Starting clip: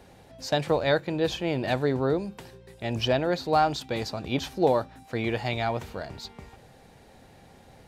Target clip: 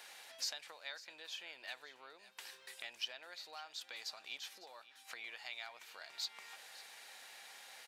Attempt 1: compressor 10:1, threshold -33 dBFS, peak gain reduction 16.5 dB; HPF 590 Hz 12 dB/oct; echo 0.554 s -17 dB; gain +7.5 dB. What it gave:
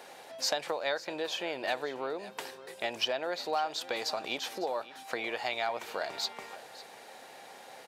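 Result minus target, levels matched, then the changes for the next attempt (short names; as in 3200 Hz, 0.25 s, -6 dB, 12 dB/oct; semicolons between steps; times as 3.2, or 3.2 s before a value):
500 Hz band +12.0 dB; compressor: peak gain reduction -9.5 dB
change: compressor 10:1, threshold -43.5 dBFS, peak gain reduction 26 dB; change: HPF 1700 Hz 12 dB/oct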